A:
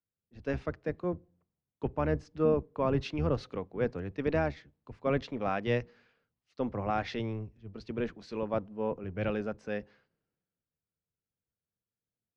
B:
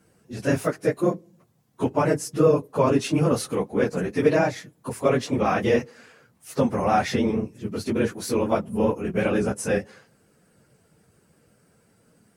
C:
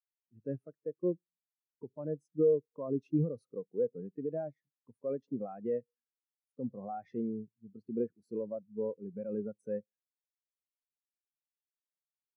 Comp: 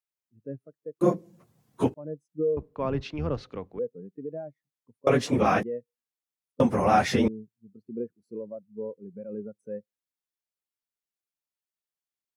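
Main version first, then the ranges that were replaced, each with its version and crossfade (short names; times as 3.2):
C
1.01–1.94 from B
2.57–3.79 from A
5.07–5.63 from B
6.6–7.28 from B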